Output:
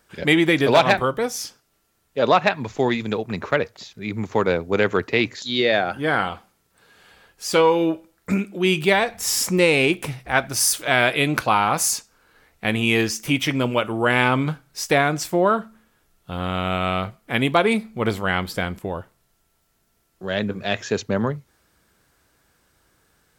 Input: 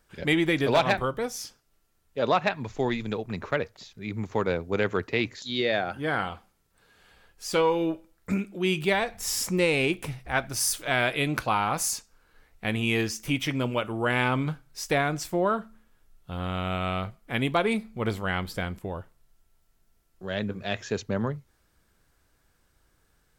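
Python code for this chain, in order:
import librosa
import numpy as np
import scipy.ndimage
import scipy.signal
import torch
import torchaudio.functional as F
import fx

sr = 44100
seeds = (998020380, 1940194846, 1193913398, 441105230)

y = fx.highpass(x, sr, hz=120.0, slope=6)
y = y * librosa.db_to_amplitude(7.0)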